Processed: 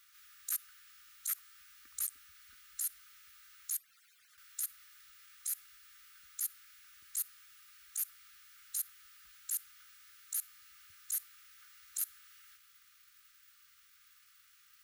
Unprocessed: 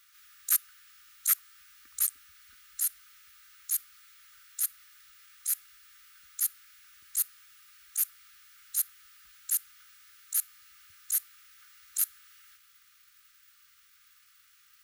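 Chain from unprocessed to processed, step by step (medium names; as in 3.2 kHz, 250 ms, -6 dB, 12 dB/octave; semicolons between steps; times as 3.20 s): 3.75–4.38 s: harmonic-percussive separation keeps percussive; peak limiter -22 dBFS, peak gain reduction 10.5 dB; trim -2.5 dB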